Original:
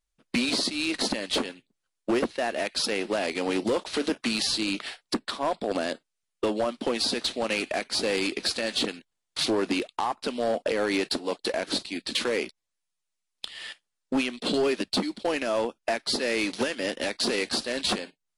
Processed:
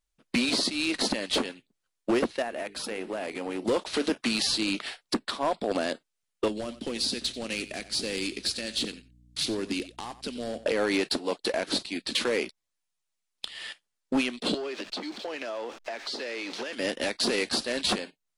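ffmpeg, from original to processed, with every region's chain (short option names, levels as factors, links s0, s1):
-filter_complex "[0:a]asettb=1/sr,asplit=3[s0][s1][s2];[s0]atrim=end=2.424[s3];[s1]atrim=start=2.42:end=3.68,asetpts=PTS-STARTPTS,afade=t=in:d=0.004:c=qsin,afade=t=out:st=1.256:d=0.004:c=qsin,equalizer=f=4700:t=o:w=1.4:g=-8,bandreject=f=50:t=h:w=6,bandreject=f=100:t=h:w=6,bandreject=f=150:t=h:w=6,bandreject=f=200:t=h:w=6,bandreject=f=250:t=h:w=6,bandreject=f=300:t=h:w=6,bandreject=f=350:t=h:w=6,bandreject=f=400:t=h:w=6,bandreject=f=450:t=h:w=6,acompressor=threshold=0.0224:ratio=2:attack=3.2:release=140:knee=1:detection=peak[s4];[s2]atrim=start=3.676[s5];[s3][s4]acrossfade=d=0.004:c1=hsin:c2=qsin[s6];[s6][s5]acrossfade=d=0.004:c1=qsin:c2=hsin,asettb=1/sr,asplit=3[s7][s8][s9];[s7]atrim=end=6.484[s10];[s8]atrim=start=6.48:end=10.66,asetpts=PTS-STARTPTS,afade=t=in:d=0.004:c=qsin,afade=t=out:st=4.176:d=0.004:c=qsin,equalizer=f=890:w=0.55:g=-12.5,aeval=exprs='val(0)+0.00158*(sin(2*PI*60*n/s)+sin(2*PI*2*60*n/s)/2+sin(2*PI*3*60*n/s)/3+sin(2*PI*4*60*n/s)/4+sin(2*PI*5*60*n/s)/5)':c=same,aecho=1:1:90:0.168,atrim=end_sample=184338[s11];[s9]atrim=start=10.656[s12];[s10][s11]acrossfade=d=0.004:c1=hsin:c2=qsin[s13];[s13][s12]acrossfade=d=0.004:c1=qsin:c2=hsin,asettb=1/sr,asplit=3[s14][s15][s16];[s14]atrim=end=14.544[s17];[s15]atrim=start=14.54:end=16.73,asetpts=PTS-STARTPTS,afade=t=in:d=0.004:c=qsin,afade=t=out:st=2.186:d=0.004:c=qsin,aeval=exprs='val(0)+0.5*0.0141*sgn(val(0))':c=same,acrossover=split=290 7400:gain=0.158 1 0.0794[s18][s19][s20];[s18][s19][s20]amix=inputs=3:normalize=0,acompressor=threshold=0.0282:ratio=6:attack=3.2:release=140:knee=1:detection=peak[s21];[s16]atrim=start=16.726[s22];[s17][s21]acrossfade=d=0.004:c1=hsin:c2=qsin[s23];[s23][s22]acrossfade=d=0.004:c1=qsin:c2=hsin"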